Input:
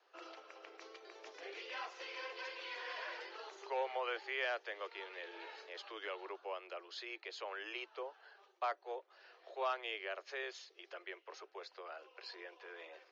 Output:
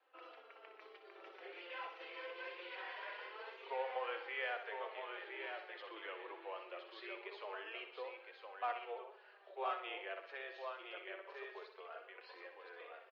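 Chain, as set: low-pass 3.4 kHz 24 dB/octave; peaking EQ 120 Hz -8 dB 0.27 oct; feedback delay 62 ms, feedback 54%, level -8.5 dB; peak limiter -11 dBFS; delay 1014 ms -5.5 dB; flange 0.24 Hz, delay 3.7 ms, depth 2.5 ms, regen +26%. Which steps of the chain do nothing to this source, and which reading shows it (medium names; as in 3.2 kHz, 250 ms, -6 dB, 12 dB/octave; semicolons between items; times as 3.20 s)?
peaking EQ 120 Hz: input has nothing below 290 Hz; peak limiter -11 dBFS: peak at its input -23.0 dBFS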